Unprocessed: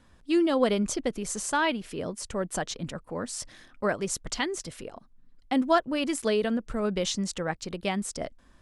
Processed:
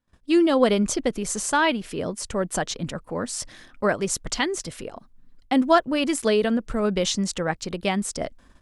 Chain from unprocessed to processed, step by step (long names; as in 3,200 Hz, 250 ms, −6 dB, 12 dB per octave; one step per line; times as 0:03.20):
noise gate −55 dBFS, range −27 dB
level +5 dB